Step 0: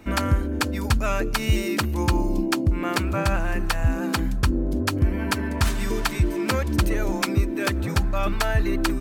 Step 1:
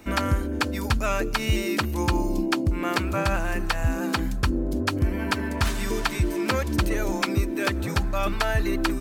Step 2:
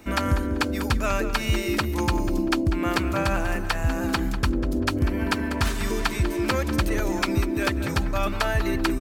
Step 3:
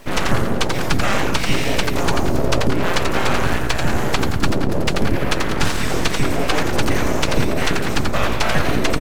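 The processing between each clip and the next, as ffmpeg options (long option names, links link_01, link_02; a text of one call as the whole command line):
ffmpeg -i in.wav -filter_complex "[0:a]acrossover=split=4400[link_01][link_02];[link_02]acompressor=threshold=-40dB:ratio=4:attack=1:release=60[link_03];[link_01][link_03]amix=inputs=2:normalize=0,bass=frequency=250:gain=-3,treble=frequency=4000:gain=5" out.wav
ffmpeg -i in.wav -filter_complex "[0:a]asplit=2[link_01][link_02];[link_02]adelay=194,lowpass=frequency=3600:poles=1,volume=-10dB,asplit=2[link_03][link_04];[link_04]adelay=194,lowpass=frequency=3600:poles=1,volume=0.34,asplit=2[link_05][link_06];[link_06]adelay=194,lowpass=frequency=3600:poles=1,volume=0.34,asplit=2[link_07][link_08];[link_08]adelay=194,lowpass=frequency=3600:poles=1,volume=0.34[link_09];[link_01][link_03][link_05][link_07][link_09]amix=inputs=5:normalize=0" out.wav
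ffmpeg -i in.wav -filter_complex "[0:a]asplit=5[link_01][link_02][link_03][link_04][link_05];[link_02]adelay=87,afreqshift=-120,volume=-5dB[link_06];[link_03]adelay=174,afreqshift=-240,volume=-13.9dB[link_07];[link_04]adelay=261,afreqshift=-360,volume=-22.7dB[link_08];[link_05]adelay=348,afreqshift=-480,volume=-31.6dB[link_09];[link_01][link_06][link_07][link_08][link_09]amix=inputs=5:normalize=0,aeval=exprs='abs(val(0))':channel_layout=same,acrossover=split=9300[link_10][link_11];[link_11]acompressor=threshold=-47dB:ratio=4:attack=1:release=60[link_12];[link_10][link_12]amix=inputs=2:normalize=0,volume=7dB" out.wav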